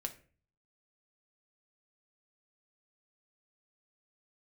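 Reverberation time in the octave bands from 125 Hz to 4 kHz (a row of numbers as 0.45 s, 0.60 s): 0.80 s, 0.55 s, 0.45 s, 0.35 s, 0.40 s, 0.30 s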